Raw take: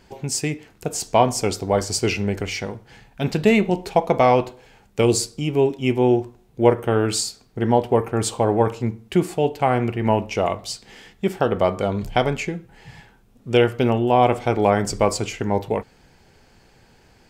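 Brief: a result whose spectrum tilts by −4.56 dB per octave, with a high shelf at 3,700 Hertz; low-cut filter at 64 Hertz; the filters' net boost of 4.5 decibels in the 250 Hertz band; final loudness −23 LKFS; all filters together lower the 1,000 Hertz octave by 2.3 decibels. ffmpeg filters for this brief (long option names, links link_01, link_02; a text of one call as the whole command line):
ffmpeg -i in.wav -af "highpass=64,equalizer=frequency=250:width_type=o:gain=6,equalizer=frequency=1000:width_type=o:gain=-4.5,highshelf=frequency=3700:gain=8.5,volume=-4dB" out.wav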